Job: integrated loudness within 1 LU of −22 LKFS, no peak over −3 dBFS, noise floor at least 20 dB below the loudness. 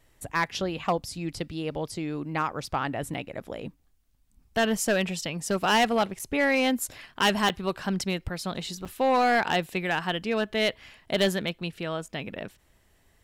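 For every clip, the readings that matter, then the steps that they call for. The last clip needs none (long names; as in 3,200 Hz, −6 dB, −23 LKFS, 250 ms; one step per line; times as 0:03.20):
share of clipped samples 0.9%; peaks flattened at −17.0 dBFS; number of dropouts 4; longest dropout 6.3 ms; integrated loudness −27.5 LKFS; sample peak −17.0 dBFS; target loudness −22.0 LKFS
→ clipped peaks rebuilt −17 dBFS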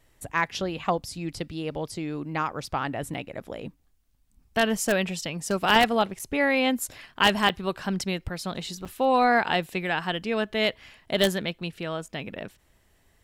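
share of clipped samples 0.0%; number of dropouts 4; longest dropout 6.3 ms
→ repair the gap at 0:03.14/0:06.19/0:07.49/0:08.85, 6.3 ms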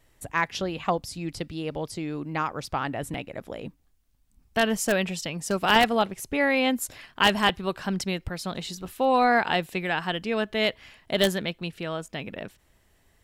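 number of dropouts 0; integrated loudness −26.5 LKFS; sample peak −8.0 dBFS; target loudness −22.0 LKFS
→ level +4.5 dB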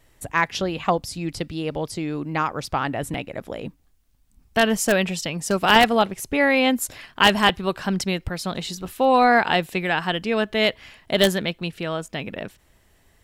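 integrated loudness −22.0 LKFS; sample peak −3.5 dBFS; background noise floor −60 dBFS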